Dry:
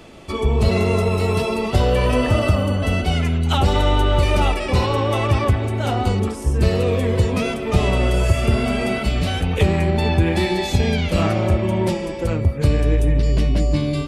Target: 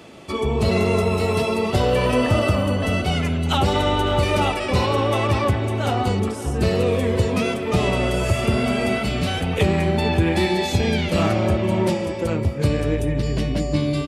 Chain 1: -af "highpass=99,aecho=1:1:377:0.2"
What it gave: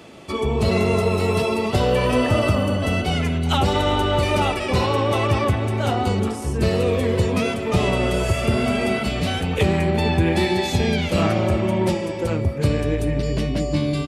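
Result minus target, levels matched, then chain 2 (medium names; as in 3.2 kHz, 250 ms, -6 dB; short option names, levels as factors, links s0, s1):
echo 183 ms early
-af "highpass=99,aecho=1:1:560:0.2"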